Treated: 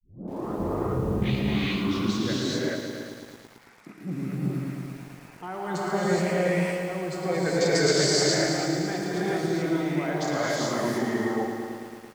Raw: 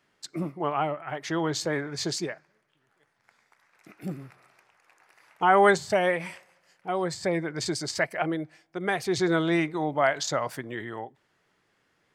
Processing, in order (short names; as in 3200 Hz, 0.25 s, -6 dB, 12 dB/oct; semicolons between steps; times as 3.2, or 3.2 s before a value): tape start at the beginning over 2.46 s; bell 220 Hz +10 dB 1.8 oct; reverse; compressor 10:1, threshold -31 dBFS, peak gain reduction 20 dB; reverse; outdoor echo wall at 60 m, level -17 dB; spectral gain 7.29–8.01, 390–8000 Hz +10 dB; on a send: echo 0.296 s -14 dB; on the sum: non-linear reverb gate 0.45 s rising, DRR -7 dB; lo-fi delay 0.111 s, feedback 80%, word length 8-bit, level -8.5 dB